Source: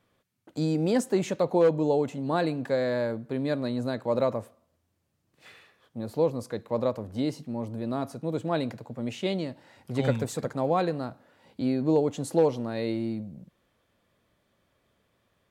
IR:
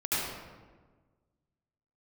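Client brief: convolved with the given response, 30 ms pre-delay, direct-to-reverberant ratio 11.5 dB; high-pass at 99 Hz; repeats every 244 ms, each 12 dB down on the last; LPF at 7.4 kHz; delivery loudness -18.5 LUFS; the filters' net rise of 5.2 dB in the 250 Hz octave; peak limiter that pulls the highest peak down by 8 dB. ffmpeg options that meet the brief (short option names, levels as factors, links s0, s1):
-filter_complex "[0:a]highpass=99,lowpass=7400,equalizer=f=250:t=o:g=6.5,alimiter=limit=0.15:level=0:latency=1,aecho=1:1:244|488|732:0.251|0.0628|0.0157,asplit=2[s0][s1];[1:a]atrim=start_sample=2205,adelay=30[s2];[s1][s2]afir=irnorm=-1:irlink=0,volume=0.0891[s3];[s0][s3]amix=inputs=2:normalize=0,volume=2.66"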